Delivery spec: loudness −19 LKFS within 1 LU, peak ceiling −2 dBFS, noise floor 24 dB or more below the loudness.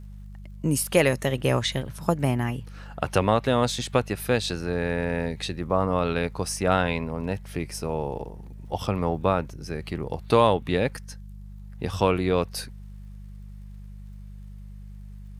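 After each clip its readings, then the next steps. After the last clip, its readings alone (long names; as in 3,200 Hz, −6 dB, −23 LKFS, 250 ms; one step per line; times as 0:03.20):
crackle rate 52 per second; mains hum 50 Hz; hum harmonics up to 200 Hz; level of the hum −38 dBFS; integrated loudness −26.0 LKFS; sample peak −5.0 dBFS; target loudness −19.0 LKFS
→ click removal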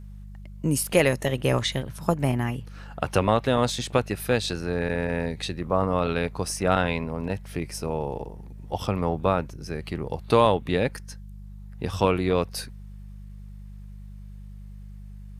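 crackle rate 0.19 per second; mains hum 50 Hz; hum harmonics up to 200 Hz; level of the hum −38 dBFS
→ hum removal 50 Hz, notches 4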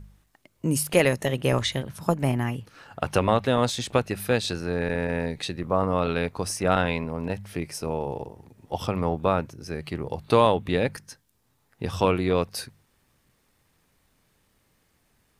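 mains hum none found; integrated loudness −26.0 LKFS; sample peak −5.0 dBFS; target loudness −19.0 LKFS
→ level +7 dB
brickwall limiter −2 dBFS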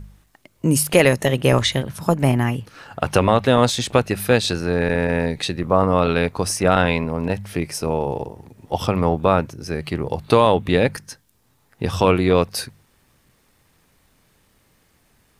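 integrated loudness −19.5 LKFS; sample peak −2.0 dBFS; background noise floor −61 dBFS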